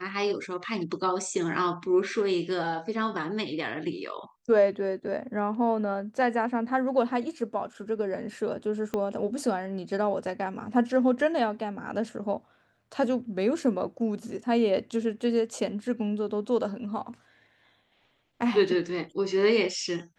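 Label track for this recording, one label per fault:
8.940000	8.940000	pop -17 dBFS

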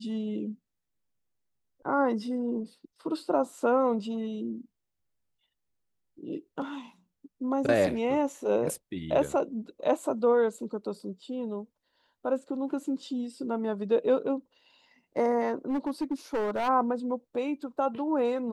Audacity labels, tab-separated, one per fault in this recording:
15.690000	16.690000	clipped -25.5 dBFS

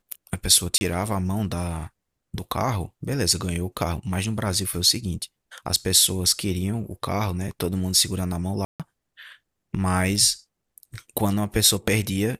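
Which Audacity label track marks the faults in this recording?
0.780000	0.810000	gap 30 ms
8.650000	8.800000	gap 0.147 s

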